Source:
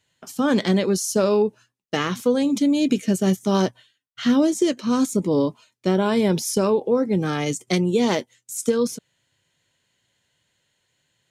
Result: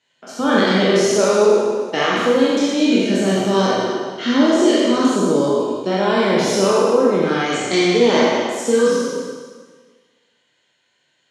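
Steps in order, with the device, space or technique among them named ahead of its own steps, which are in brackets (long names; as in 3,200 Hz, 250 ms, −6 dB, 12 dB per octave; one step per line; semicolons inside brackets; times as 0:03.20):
peak hold with a decay on every bin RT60 1.50 s
supermarket ceiling speaker (band-pass filter 240–5,400 Hz; convolution reverb RT60 1.1 s, pre-delay 21 ms, DRR −2.5 dB)
0:05.16–0:05.91: parametric band 2,100 Hz −11 dB 0.24 octaves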